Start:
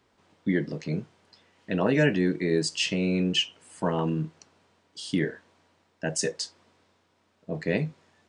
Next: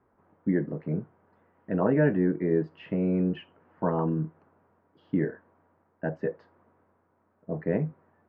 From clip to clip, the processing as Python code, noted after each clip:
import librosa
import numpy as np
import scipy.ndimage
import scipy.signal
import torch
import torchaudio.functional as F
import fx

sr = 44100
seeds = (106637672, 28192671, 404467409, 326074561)

y = scipy.signal.sosfilt(scipy.signal.butter(4, 1500.0, 'lowpass', fs=sr, output='sos'), x)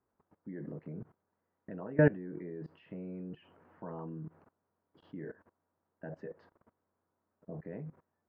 y = fx.level_steps(x, sr, step_db=21)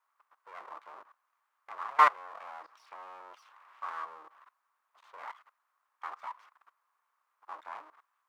y = np.abs(x)
y = fx.highpass_res(y, sr, hz=1100.0, q=4.7)
y = F.gain(torch.from_numpy(y), 3.5).numpy()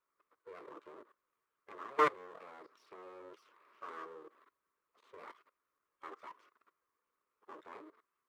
y = fx.spec_quant(x, sr, step_db=15)
y = fx.low_shelf_res(y, sr, hz=570.0, db=11.5, q=3.0)
y = F.gain(torch.from_numpy(y), -4.5).numpy()